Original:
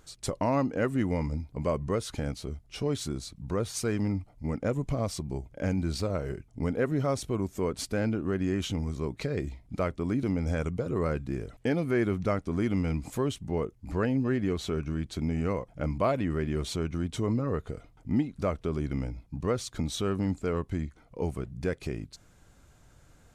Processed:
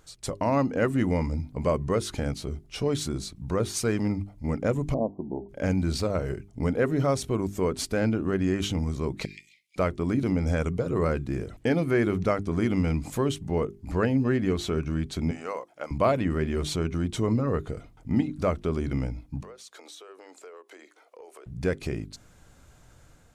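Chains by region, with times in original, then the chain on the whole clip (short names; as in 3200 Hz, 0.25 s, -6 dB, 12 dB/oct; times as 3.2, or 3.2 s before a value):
4.94–5.49 steep low-pass 980 Hz 96 dB/oct + resonant low shelf 160 Hz -12.5 dB, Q 1.5
9.25–9.76 steep high-pass 2100 Hz 72 dB/oct + high shelf 3900 Hz -7.5 dB + three-band squash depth 70%
15.31–15.91 HPF 640 Hz + dynamic EQ 2200 Hz, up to -4 dB, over -52 dBFS, Q 1.3
19.42–21.46 steep high-pass 390 Hz + compressor, threshold -48 dBFS
whole clip: AGC gain up to 4 dB; notches 50/100/150/200/250/300/350/400 Hz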